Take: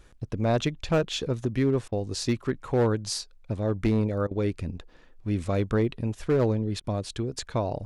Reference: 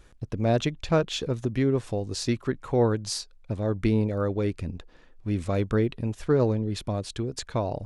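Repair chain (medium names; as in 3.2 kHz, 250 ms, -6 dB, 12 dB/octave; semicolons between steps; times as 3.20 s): clip repair -17 dBFS; interpolate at 1.88/4.27/6.80 s, 40 ms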